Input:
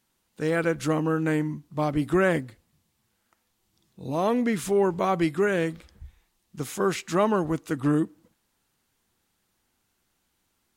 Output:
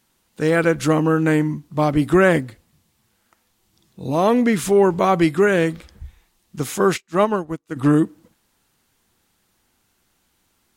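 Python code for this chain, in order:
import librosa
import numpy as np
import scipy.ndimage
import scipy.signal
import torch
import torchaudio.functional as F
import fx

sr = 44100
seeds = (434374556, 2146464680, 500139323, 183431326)

y = fx.upward_expand(x, sr, threshold_db=-38.0, expansion=2.5, at=(6.96, 7.75), fade=0.02)
y = y * librosa.db_to_amplitude(7.5)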